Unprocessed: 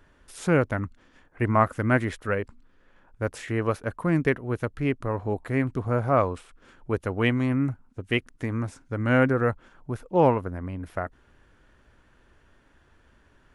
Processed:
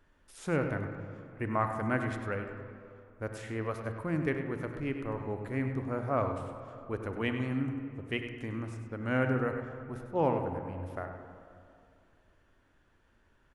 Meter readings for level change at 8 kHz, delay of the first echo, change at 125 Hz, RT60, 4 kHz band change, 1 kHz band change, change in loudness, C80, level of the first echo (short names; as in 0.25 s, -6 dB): n/a, 99 ms, -8.0 dB, 2.5 s, -8.0 dB, -7.5 dB, -8.0 dB, 6.0 dB, -10.5 dB